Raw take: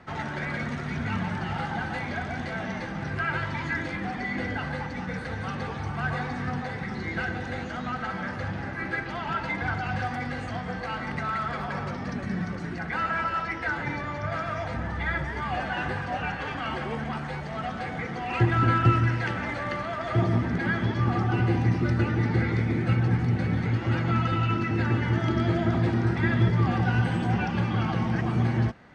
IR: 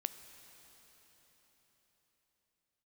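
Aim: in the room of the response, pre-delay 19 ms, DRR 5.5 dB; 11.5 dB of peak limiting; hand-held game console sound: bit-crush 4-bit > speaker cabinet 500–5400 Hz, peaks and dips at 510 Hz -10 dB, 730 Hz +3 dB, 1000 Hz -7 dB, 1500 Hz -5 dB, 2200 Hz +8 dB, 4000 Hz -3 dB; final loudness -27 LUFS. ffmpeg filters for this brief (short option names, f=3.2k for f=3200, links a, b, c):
-filter_complex "[0:a]alimiter=limit=-19dB:level=0:latency=1,asplit=2[a][b];[1:a]atrim=start_sample=2205,adelay=19[c];[b][c]afir=irnorm=-1:irlink=0,volume=-5dB[d];[a][d]amix=inputs=2:normalize=0,acrusher=bits=3:mix=0:aa=0.000001,highpass=500,equalizer=f=510:t=q:w=4:g=-10,equalizer=f=730:t=q:w=4:g=3,equalizer=f=1k:t=q:w=4:g=-7,equalizer=f=1.5k:t=q:w=4:g=-5,equalizer=f=2.2k:t=q:w=4:g=8,equalizer=f=4k:t=q:w=4:g=-3,lowpass=f=5.4k:w=0.5412,lowpass=f=5.4k:w=1.3066,volume=2.5dB"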